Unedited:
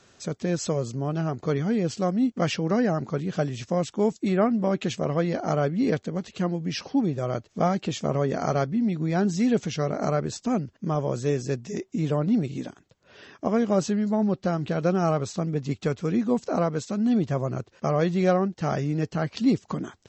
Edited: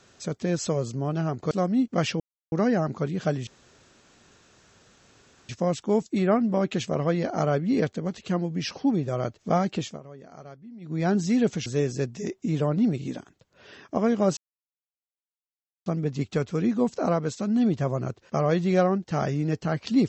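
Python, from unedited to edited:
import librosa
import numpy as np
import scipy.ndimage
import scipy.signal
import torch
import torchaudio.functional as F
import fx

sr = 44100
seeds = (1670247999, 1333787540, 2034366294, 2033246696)

y = fx.edit(x, sr, fx.cut(start_s=1.51, length_s=0.44),
    fx.insert_silence(at_s=2.64, length_s=0.32),
    fx.insert_room_tone(at_s=3.59, length_s=2.02),
    fx.fade_down_up(start_s=7.88, length_s=1.24, db=-20.0, fade_s=0.22),
    fx.cut(start_s=9.76, length_s=1.4),
    fx.silence(start_s=13.87, length_s=1.49), tone=tone)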